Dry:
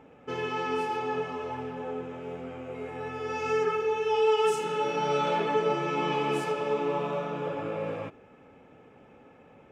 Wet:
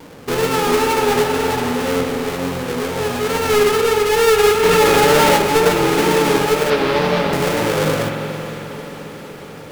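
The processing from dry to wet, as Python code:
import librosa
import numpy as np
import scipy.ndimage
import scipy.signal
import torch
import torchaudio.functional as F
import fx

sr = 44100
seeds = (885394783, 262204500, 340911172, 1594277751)

p1 = fx.halfwave_hold(x, sr)
p2 = fx.steep_lowpass(p1, sr, hz=5100.0, slope=36, at=(6.7, 7.33))
p3 = fx.rider(p2, sr, range_db=4, speed_s=0.5)
p4 = p2 + (p3 * 10.0 ** (2.5 / 20.0))
p5 = fx.wow_flutter(p4, sr, seeds[0], rate_hz=2.1, depth_cents=84.0)
p6 = fx.echo_diffused(p5, sr, ms=521, feedback_pct=66, wet_db=-14.5)
p7 = fx.rev_spring(p6, sr, rt60_s=2.9, pass_ms=(45,), chirp_ms=35, drr_db=3.5)
y = fx.env_flatten(p7, sr, amount_pct=70, at=(4.62, 5.36), fade=0.02)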